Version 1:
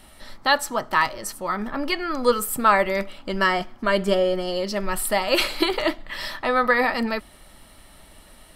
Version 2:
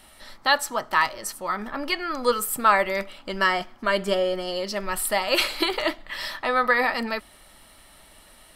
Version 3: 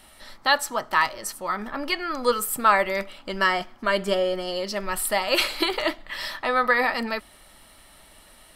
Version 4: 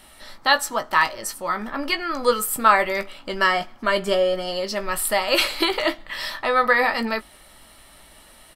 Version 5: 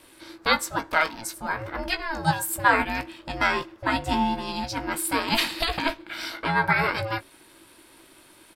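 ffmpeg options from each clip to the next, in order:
-af "lowshelf=f=440:g=-7"
-af anull
-filter_complex "[0:a]asplit=2[a][b];[b]adelay=18,volume=-9dB[c];[a][c]amix=inputs=2:normalize=0,volume=2dB"
-af "aeval=exprs='val(0)*sin(2*PI*330*n/s)':c=same,volume=-1dB"

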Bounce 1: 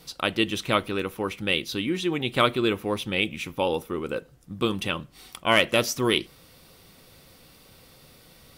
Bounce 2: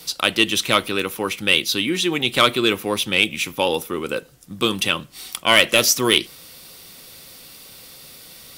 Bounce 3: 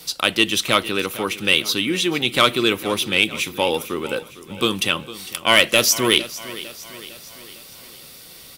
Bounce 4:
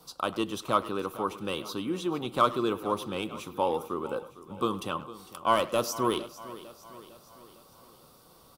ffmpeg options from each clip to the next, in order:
-filter_complex "[0:a]highshelf=f=2.4k:g=11,acrossover=split=150[a][b];[b]acontrast=35[c];[a][c]amix=inputs=2:normalize=0,volume=-1.5dB"
-af "aecho=1:1:455|910|1365|1820|2275:0.15|0.0778|0.0405|0.021|0.0109"
-filter_complex "[0:a]highshelf=f=1.5k:t=q:w=3:g=-9.5,asplit=2[a][b];[b]adelay=100,highpass=300,lowpass=3.4k,asoftclip=type=hard:threshold=-11.5dB,volume=-16dB[c];[a][c]amix=inputs=2:normalize=0,volume=-8.5dB"

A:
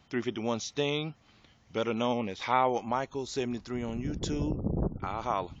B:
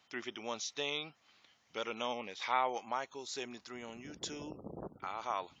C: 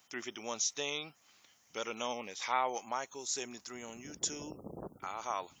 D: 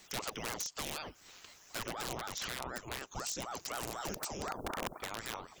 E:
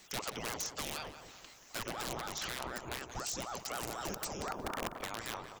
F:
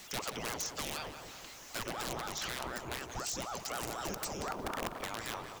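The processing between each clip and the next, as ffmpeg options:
-af "highpass=f=1.1k:p=1,volume=-2dB"
-af "aexciter=amount=5.6:drive=2.6:freq=5.7k"
-filter_complex "[0:a]acrossover=split=240[a][b];[b]acompressor=threshold=-46dB:ratio=10[c];[a][c]amix=inputs=2:normalize=0,aeval=exprs='(mod(89.1*val(0)+1,2)-1)/89.1':c=same,aeval=exprs='val(0)*sin(2*PI*590*n/s+590*0.85/4*sin(2*PI*4*n/s))':c=same,volume=12dB"
-filter_complex "[0:a]asplit=2[a][b];[b]adelay=180,lowpass=f=2.4k:p=1,volume=-9dB,asplit=2[c][d];[d]adelay=180,lowpass=f=2.4k:p=1,volume=0.47,asplit=2[e][f];[f]adelay=180,lowpass=f=2.4k:p=1,volume=0.47,asplit=2[g][h];[h]adelay=180,lowpass=f=2.4k:p=1,volume=0.47,asplit=2[i][j];[j]adelay=180,lowpass=f=2.4k:p=1,volume=0.47[k];[a][c][e][g][i][k]amix=inputs=6:normalize=0"
-af "aeval=exprs='val(0)+0.5*0.00355*sgn(val(0))':c=same"

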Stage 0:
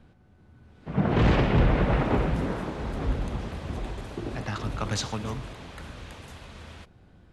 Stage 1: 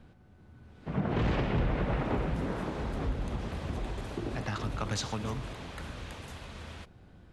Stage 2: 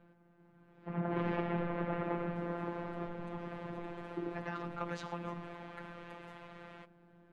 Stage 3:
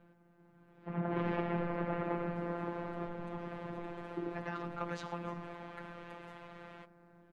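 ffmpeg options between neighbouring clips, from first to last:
-af "acompressor=threshold=-32dB:ratio=2"
-filter_complex "[0:a]afftfilt=real='hypot(re,im)*cos(PI*b)':imag='0':win_size=1024:overlap=0.75,acrossover=split=180 2500:gain=0.251 1 0.112[a][b][c];[a][b][c]amix=inputs=3:normalize=0,volume=1dB"
-filter_complex "[0:a]asplit=2[a][b];[b]adelay=360,highpass=300,lowpass=3.4k,asoftclip=type=hard:threshold=-32dB,volume=-20dB[c];[a][c]amix=inputs=2:normalize=0"

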